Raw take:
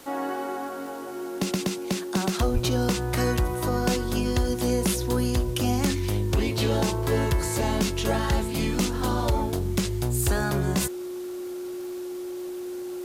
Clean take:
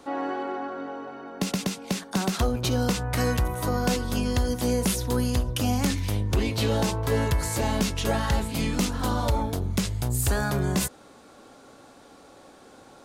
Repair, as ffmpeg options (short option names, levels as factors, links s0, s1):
-filter_complex "[0:a]adeclick=t=4,bandreject=f=360:w=30,asplit=3[s0][s1][s2];[s0]afade=t=out:st=2.53:d=0.02[s3];[s1]highpass=f=140:w=0.5412,highpass=f=140:w=1.3066,afade=t=in:st=2.53:d=0.02,afade=t=out:st=2.65:d=0.02[s4];[s2]afade=t=in:st=2.65:d=0.02[s5];[s3][s4][s5]amix=inputs=3:normalize=0,afwtdn=0.0032"